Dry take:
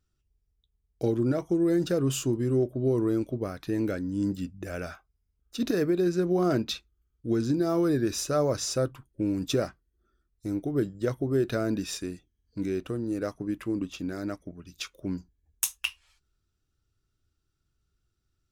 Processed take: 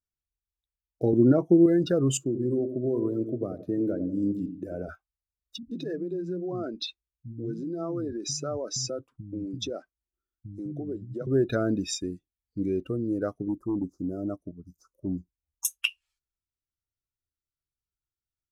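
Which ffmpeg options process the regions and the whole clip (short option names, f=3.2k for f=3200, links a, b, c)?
-filter_complex "[0:a]asettb=1/sr,asplit=3[a][b][c];[a]atrim=end=1.134[d];[b]atrim=start=1.13:end=1.66,asetpts=PTS-STARTPTS,afade=t=in:d=0.004:c=qsin,afade=t=out:st=0.526:d=0.004:c=qsin,highpass=160,lowshelf=f=450:g=8.5[e];[c]atrim=start=1.656[f];[d][e]acrossfade=d=0.004:c1=hsin:c2=qsin[g];[g][f]acrossfade=d=0.004:c1=qsin:c2=hsin,asettb=1/sr,asplit=3[h][i][j];[h]atrim=end=2.174[k];[i]atrim=start=2.17:end=4.89,asetpts=PTS-STARTPTS,afade=t=in:d=0.004:c=qsin,afade=t=out:st=2.716:d=0.004:c=qsin,highpass=120,acrossover=split=260|940[l][m][n];[l]acompressor=threshold=-35dB:ratio=4[o];[m]acompressor=threshold=-29dB:ratio=4[p];[n]acompressor=threshold=-51dB:ratio=4[q];[o][p][q]amix=inputs=3:normalize=0,asplit=2[r][s];[s]adelay=89,lowpass=f=1.8k:p=1,volume=-8dB,asplit=2[t][u];[u]adelay=89,lowpass=f=1.8k:p=1,volume=0.53,asplit=2[v][w];[w]adelay=89,lowpass=f=1.8k:p=1,volume=0.53,asplit=2[x][y];[y]adelay=89,lowpass=f=1.8k:p=1,volume=0.53,asplit=2[z][aa];[aa]adelay=89,lowpass=f=1.8k:p=1,volume=0.53,asplit=2[ab][ac];[ac]adelay=89,lowpass=f=1.8k:p=1,volume=0.53[ad];[r][t][v][x][z][ab][ad]amix=inputs=7:normalize=0,atrim=end_sample=119952[ae];[j]atrim=start=4.886[af];[k][ae]acrossfade=d=0.004:c1=hsin:c2=qsin[ag];[ag][af]acrossfade=d=0.004:c1=qsin:c2=hsin,asettb=1/sr,asplit=3[ah][ai][aj];[ah]atrim=end=5.584[ak];[ai]atrim=start=5.58:end=11.27,asetpts=PTS-STARTPTS,afade=t=in:d=0.004:c=qsin,afade=t=out:st=5.686:d=0.004:c=qsin,lowpass=8.6k,acompressor=threshold=-31dB:ratio=4:attack=3.2:release=140:knee=1:detection=peak,acrossover=split=200[al][am];[am]adelay=130[an];[al][an]amix=inputs=2:normalize=0,atrim=end_sample=250929[ao];[aj]atrim=start=11.266[ap];[ak][ao]acrossfade=d=0.004:c1=hsin:c2=qsin[aq];[aq][ap]acrossfade=d=0.004:c1=qsin:c2=hsin,asettb=1/sr,asplit=3[ar][as][at];[ar]atrim=end=13.484[au];[as]atrim=start=13.48:end=15.65,asetpts=PTS-STARTPTS,afade=t=in:d=0.004:c=qsin,afade=t=out:st=2.166:d=0.004:c=qsin,acrossover=split=4800[av][aw];[aw]acompressor=threshold=-54dB:ratio=4:attack=1:release=60[ax];[av][ax]amix=inputs=2:normalize=0,asoftclip=type=hard:threshold=-25.5dB,asuperstop=centerf=2700:order=8:qfactor=0.65[ay];[at]atrim=start=15.646[az];[au][ay]acrossfade=d=0.004:c1=hsin:c2=qsin[ba];[ba][az]acrossfade=d=0.004:c1=qsin:c2=hsin,afftdn=nr=23:nf=-36,highshelf=f=5.3k:g=8,volume=2dB"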